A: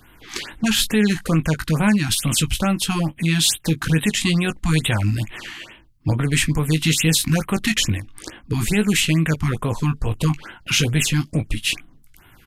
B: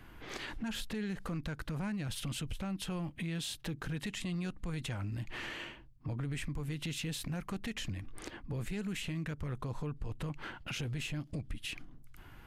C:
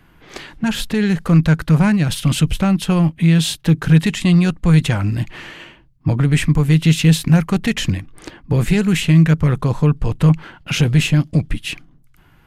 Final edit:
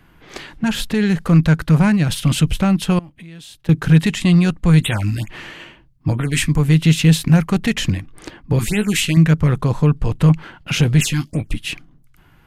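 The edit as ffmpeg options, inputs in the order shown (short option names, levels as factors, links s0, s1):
-filter_complex "[0:a]asplit=4[s0][s1][s2][s3];[2:a]asplit=6[s4][s5][s6][s7][s8][s9];[s4]atrim=end=2.992[s10];[1:a]atrim=start=2.988:end=3.692[s11];[s5]atrim=start=3.688:end=4.832[s12];[s0]atrim=start=4.828:end=5.292[s13];[s6]atrim=start=5.288:end=6.22[s14];[s1]atrim=start=5.98:end=6.63[s15];[s7]atrim=start=6.39:end=8.592[s16];[s2]atrim=start=8.588:end=9.172[s17];[s8]atrim=start=9.168:end=11.012[s18];[s3]atrim=start=11.008:end=11.532[s19];[s9]atrim=start=11.528[s20];[s10][s11]acrossfade=d=0.004:c1=hsin:c2=hsin[s21];[s21][s12]acrossfade=d=0.004:c1=hsin:c2=hsin[s22];[s22][s13]acrossfade=d=0.004:c1=hsin:c2=hsin[s23];[s23][s14]acrossfade=d=0.004:c1=hsin:c2=hsin[s24];[s24][s15]acrossfade=d=0.24:c1=tri:c2=tri[s25];[s25][s16]acrossfade=d=0.24:c1=tri:c2=tri[s26];[s26][s17]acrossfade=d=0.004:c1=hsin:c2=hsin[s27];[s27][s18]acrossfade=d=0.004:c1=hsin:c2=hsin[s28];[s28][s19]acrossfade=d=0.004:c1=hsin:c2=hsin[s29];[s29][s20]acrossfade=d=0.004:c1=hsin:c2=hsin"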